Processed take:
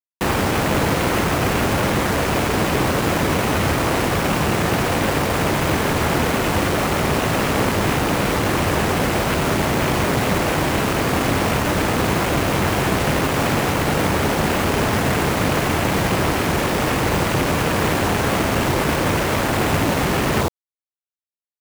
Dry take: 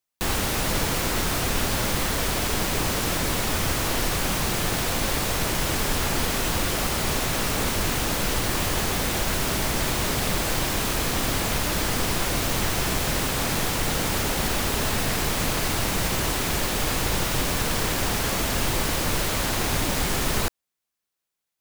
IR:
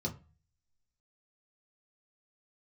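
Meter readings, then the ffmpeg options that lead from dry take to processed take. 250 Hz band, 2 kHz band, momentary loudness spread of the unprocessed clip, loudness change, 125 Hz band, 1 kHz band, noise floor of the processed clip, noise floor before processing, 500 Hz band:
+9.0 dB, +6.0 dB, 0 LU, +5.0 dB, +7.5 dB, +8.0 dB, under -85 dBFS, -84 dBFS, +9.0 dB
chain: -filter_complex "[0:a]afwtdn=0.0316,equalizer=f=4100:t=o:w=0.96:g=14.5,asplit=2[s0][s1];[s1]adynamicsmooth=sensitivity=4:basefreq=740,volume=0.944[s2];[s0][s2]amix=inputs=2:normalize=0,highpass=81,highshelf=f=2400:g=-11,bandreject=f=60:t=h:w=6,bandreject=f=120:t=h:w=6,bandreject=f=180:t=h:w=6,bandreject=f=240:t=h:w=6,acrusher=bits=4:mix=0:aa=0.000001,volume=1.58"

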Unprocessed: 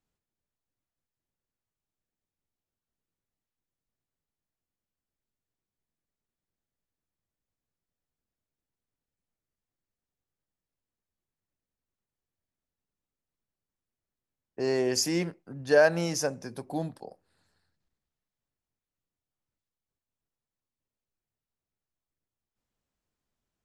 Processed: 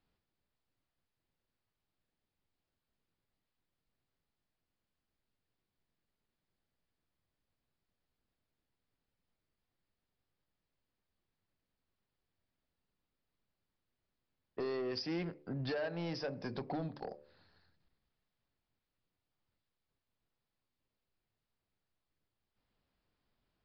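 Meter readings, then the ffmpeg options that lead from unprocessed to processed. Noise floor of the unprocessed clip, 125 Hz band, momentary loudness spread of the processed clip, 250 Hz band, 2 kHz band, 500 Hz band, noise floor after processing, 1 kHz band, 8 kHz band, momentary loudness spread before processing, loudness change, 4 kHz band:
under -85 dBFS, -6.5 dB, 10 LU, -8.0 dB, -14.5 dB, -13.0 dB, under -85 dBFS, -9.5 dB, under -30 dB, 16 LU, -12.5 dB, -10.5 dB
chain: -af "acompressor=threshold=0.0158:ratio=8,bandreject=f=73.27:t=h:w=4,bandreject=f=146.54:t=h:w=4,bandreject=f=219.81:t=h:w=4,bandreject=f=293.08:t=h:w=4,bandreject=f=366.35:t=h:w=4,bandreject=f=439.62:t=h:w=4,bandreject=f=512.89:t=h:w=4,bandreject=f=586.16:t=h:w=4,aresample=11025,asoftclip=type=tanh:threshold=0.015,aresample=44100,volume=1.68"

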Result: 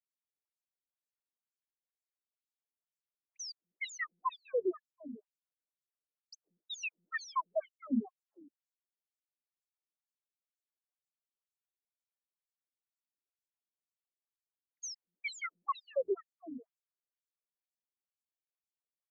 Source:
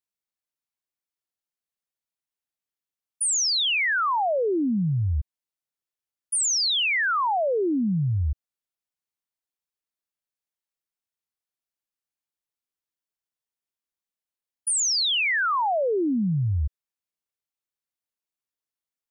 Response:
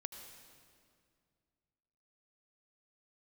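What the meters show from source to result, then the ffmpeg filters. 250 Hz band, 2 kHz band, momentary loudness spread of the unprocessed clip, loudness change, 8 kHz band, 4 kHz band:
-14.5 dB, -17.5 dB, 8 LU, -16.5 dB, -24.0 dB, -24.5 dB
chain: -filter_complex "[0:a]equalizer=f=750:w=0.38:g=6.5,acrossover=split=140|2500[s0][s1][s2];[s2]acompressor=threshold=0.0224:ratio=6[s3];[s0][s1][s3]amix=inputs=3:normalize=0,aexciter=amount=2.6:drive=8.5:freq=7200,aresample=22050,aresample=44100,aeval=exprs='0.211*(cos(1*acos(clip(val(0)/0.211,-1,1)))-cos(1*PI/2))+0.0075*(cos(2*acos(clip(val(0)/0.211,-1,1)))-cos(2*PI/2))+0.00119*(cos(3*acos(clip(val(0)/0.211,-1,1)))-cos(3*PI/2))+0.0237*(cos(6*acos(clip(val(0)/0.211,-1,1)))-cos(6*PI/2))':c=same,bass=f=250:g=4,treble=f=4000:g=-4,bandreject=f=890:w=15,acrossover=split=220|2000[s4][s5][s6];[s4]adelay=110[s7];[s5]adelay=150[s8];[s7][s8][s6]amix=inputs=3:normalize=0,acrossover=split=220[s9][s10];[s10]acompressor=threshold=0.112:ratio=6[s11];[s9][s11]amix=inputs=2:normalize=0,afftfilt=real='re*between(b*sr/1024,260*pow(5900/260,0.5+0.5*sin(2*PI*2.1*pts/sr))/1.41,260*pow(5900/260,0.5+0.5*sin(2*PI*2.1*pts/sr))*1.41)':imag='im*between(b*sr/1024,260*pow(5900/260,0.5+0.5*sin(2*PI*2.1*pts/sr))/1.41,260*pow(5900/260,0.5+0.5*sin(2*PI*2.1*pts/sr))*1.41)':win_size=1024:overlap=0.75,volume=0.422"

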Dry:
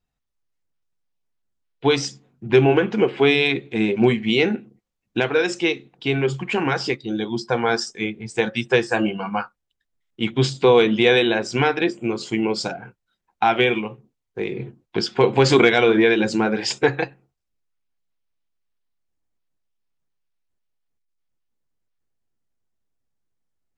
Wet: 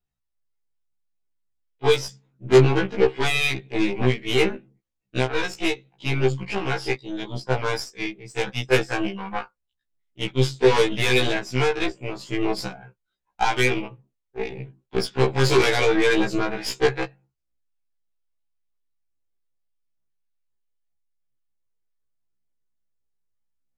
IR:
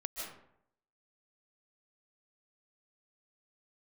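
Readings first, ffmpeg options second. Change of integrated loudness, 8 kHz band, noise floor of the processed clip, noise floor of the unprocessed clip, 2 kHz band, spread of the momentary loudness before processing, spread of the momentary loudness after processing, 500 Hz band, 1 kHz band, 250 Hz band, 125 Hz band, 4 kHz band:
-3.0 dB, -0.5 dB, -79 dBFS, -79 dBFS, -2.5 dB, 13 LU, 14 LU, -3.0 dB, -3.5 dB, -5.0 dB, +0.5 dB, -2.5 dB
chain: -af "aphaser=in_gain=1:out_gain=1:delay=2.6:decay=0.3:speed=0.8:type=triangular,aeval=exprs='0.841*(cos(1*acos(clip(val(0)/0.841,-1,1)))-cos(1*PI/2))+0.335*(cos(5*acos(clip(val(0)/0.841,-1,1)))-cos(5*PI/2))+0.15*(cos(6*acos(clip(val(0)/0.841,-1,1)))-cos(6*PI/2))+0.237*(cos(7*acos(clip(val(0)/0.841,-1,1)))-cos(7*PI/2))+0.211*(cos(8*acos(clip(val(0)/0.841,-1,1)))-cos(8*PI/2))':c=same,afftfilt=real='re*1.73*eq(mod(b,3),0)':imag='im*1.73*eq(mod(b,3),0)':win_size=2048:overlap=0.75,volume=0.562"

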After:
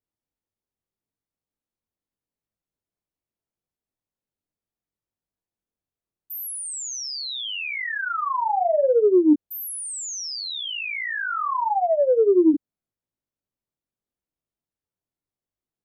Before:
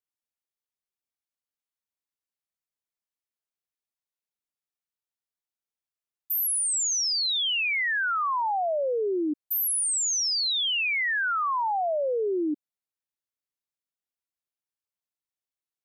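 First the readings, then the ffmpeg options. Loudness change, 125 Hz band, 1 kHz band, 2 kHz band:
+1.5 dB, no reading, +3.0 dB, -2.0 dB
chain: -af "flanger=delay=19:depth=3.4:speed=0.77,tiltshelf=f=790:g=10,acontrast=88"

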